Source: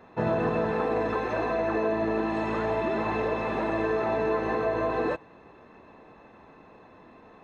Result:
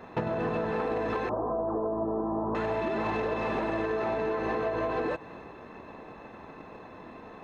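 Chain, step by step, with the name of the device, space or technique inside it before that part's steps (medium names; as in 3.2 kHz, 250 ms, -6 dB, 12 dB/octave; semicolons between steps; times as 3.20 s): drum-bus smash (transient shaper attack +8 dB, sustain +3 dB; compression, threshold -30 dBFS, peak gain reduction 13.5 dB; saturation -27 dBFS, distortion -17 dB); 1.29–2.55 s: steep low-pass 1.2 kHz 48 dB/octave; trim +5 dB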